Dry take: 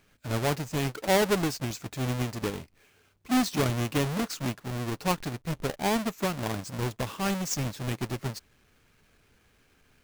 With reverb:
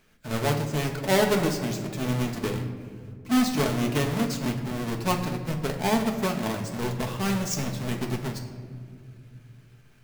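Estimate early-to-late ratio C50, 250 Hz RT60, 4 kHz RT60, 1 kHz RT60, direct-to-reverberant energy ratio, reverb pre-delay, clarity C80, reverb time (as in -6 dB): 7.5 dB, 3.3 s, 1.1 s, 1.8 s, 2.0 dB, 5 ms, 9.5 dB, 2.2 s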